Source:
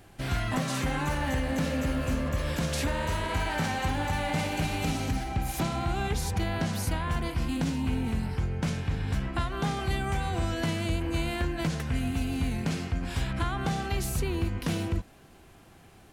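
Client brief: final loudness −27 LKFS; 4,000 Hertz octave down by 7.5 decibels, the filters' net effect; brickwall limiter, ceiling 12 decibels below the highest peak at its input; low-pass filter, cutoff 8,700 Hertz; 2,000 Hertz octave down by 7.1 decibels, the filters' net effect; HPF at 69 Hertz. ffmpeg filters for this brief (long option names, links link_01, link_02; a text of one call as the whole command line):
ffmpeg -i in.wav -af "highpass=69,lowpass=8700,equalizer=frequency=2000:width_type=o:gain=-7.5,equalizer=frequency=4000:width_type=o:gain=-7,volume=11dB,alimiter=limit=-18.5dB:level=0:latency=1" out.wav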